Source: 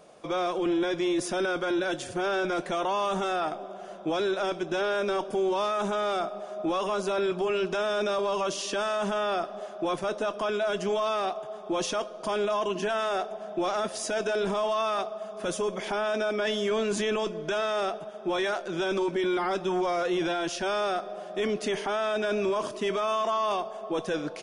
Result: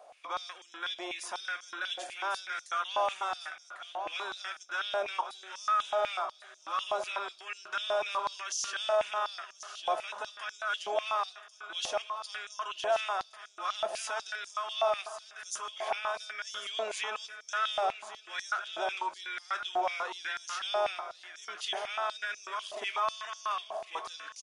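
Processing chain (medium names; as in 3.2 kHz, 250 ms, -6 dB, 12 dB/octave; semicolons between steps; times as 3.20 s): feedback delay 1098 ms, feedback 36%, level -10 dB; step-sequenced high-pass 8.1 Hz 720–5900 Hz; trim -6.5 dB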